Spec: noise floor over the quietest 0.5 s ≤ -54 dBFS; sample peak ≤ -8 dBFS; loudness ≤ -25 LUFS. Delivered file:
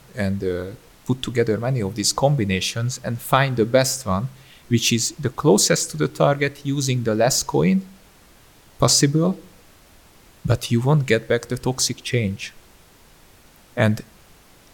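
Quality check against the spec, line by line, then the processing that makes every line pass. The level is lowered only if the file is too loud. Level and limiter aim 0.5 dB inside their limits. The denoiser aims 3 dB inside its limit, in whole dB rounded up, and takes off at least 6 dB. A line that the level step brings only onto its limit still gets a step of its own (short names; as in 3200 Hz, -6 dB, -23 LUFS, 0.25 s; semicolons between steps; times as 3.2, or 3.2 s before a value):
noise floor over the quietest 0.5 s -51 dBFS: fail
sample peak -3.5 dBFS: fail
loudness -20.5 LUFS: fail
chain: gain -5 dB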